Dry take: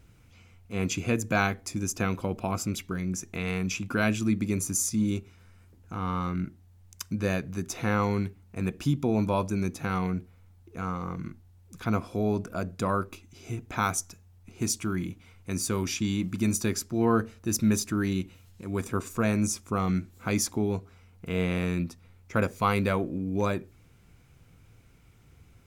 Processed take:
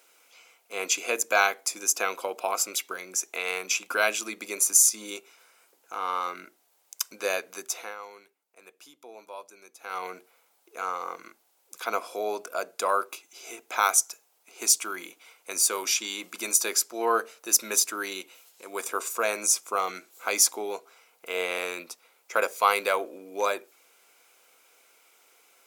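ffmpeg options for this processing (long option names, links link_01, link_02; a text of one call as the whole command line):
ffmpeg -i in.wav -filter_complex "[0:a]asplit=3[link_01][link_02][link_03];[link_01]atrim=end=7.95,asetpts=PTS-STARTPTS,afade=type=out:start_time=7.55:duration=0.4:silence=0.141254[link_04];[link_02]atrim=start=7.95:end=9.78,asetpts=PTS-STARTPTS,volume=-17dB[link_05];[link_03]atrim=start=9.78,asetpts=PTS-STARTPTS,afade=type=in:duration=0.4:silence=0.141254[link_06];[link_04][link_05][link_06]concat=n=3:v=0:a=1,highpass=frequency=480:width=0.5412,highpass=frequency=480:width=1.3066,highshelf=frequency=5700:gain=8,bandreject=frequency=1800:width=13,volume=4.5dB" out.wav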